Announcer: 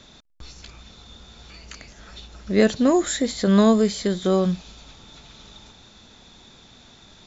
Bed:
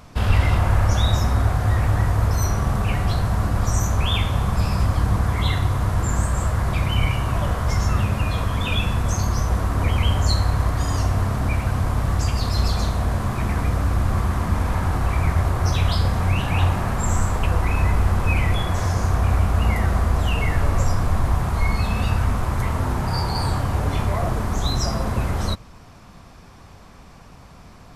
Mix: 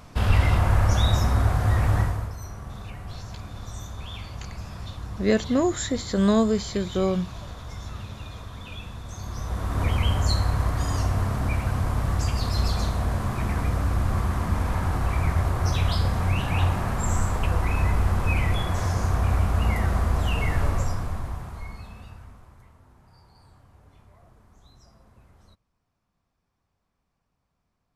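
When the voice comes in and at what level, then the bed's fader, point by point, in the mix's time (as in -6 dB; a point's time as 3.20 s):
2.70 s, -4.0 dB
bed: 2.00 s -2 dB
2.36 s -16.5 dB
9.08 s -16.5 dB
9.81 s -3.5 dB
20.66 s -3.5 dB
22.81 s -32.5 dB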